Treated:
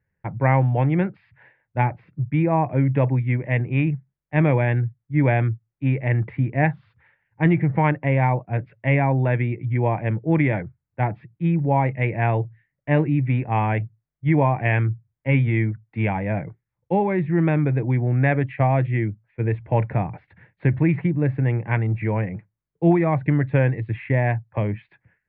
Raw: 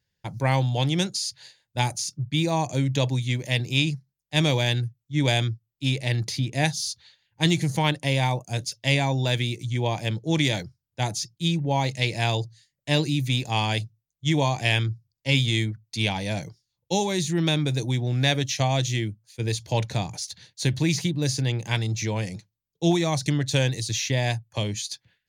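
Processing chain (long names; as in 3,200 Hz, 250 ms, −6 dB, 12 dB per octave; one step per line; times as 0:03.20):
Butterworth low-pass 2,200 Hz 48 dB per octave
level +4.5 dB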